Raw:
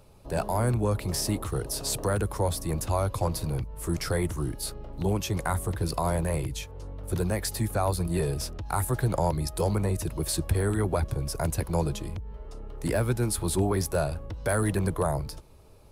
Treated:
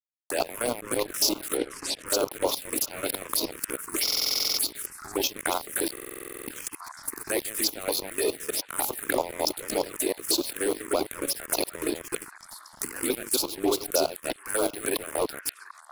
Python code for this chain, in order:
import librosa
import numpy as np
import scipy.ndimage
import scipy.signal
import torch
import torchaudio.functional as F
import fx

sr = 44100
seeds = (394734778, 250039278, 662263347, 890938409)

p1 = fx.reverse_delay(x, sr, ms=135, wet_db=-1)
p2 = scipy.signal.sosfilt(scipy.signal.ellip(4, 1.0, 40, 270.0, 'highpass', fs=sr, output='sos'), p1)
p3 = fx.peak_eq(p2, sr, hz=13000.0, db=10.5, octaves=2.8)
p4 = fx.over_compress(p3, sr, threshold_db=-34.0, ratio=-1.0)
p5 = p3 + (p4 * 10.0 ** (-0.5 / 20.0))
p6 = fx.chopper(p5, sr, hz=3.3, depth_pct=60, duty_pct=40)
p7 = np.sign(p6) * np.maximum(np.abs(p6) - 10.0 ** (-32.0 / 20.0), 0.0)
p8 = fx.air_absorb(p7, sr, metres=78.0, at=(1.57, 2.06))
p9 = p8 + fx.echo_stepped(p8, sr, ms=740, hz=1400.0, octaves=0.7, feedback_pct=70, wet_db=-12.0, dry=0)
p10 = fx.env_phaser(p9, sr, low_hz=390.0, high_hz=1800.0, full_db=-22.5)
p11 = fx.buffer_glitch(p10, sr, at_s=(4.03, 5.92), block=2048, repeats=11)
y = p11 * 10.0 ** (4.5 / 20.0)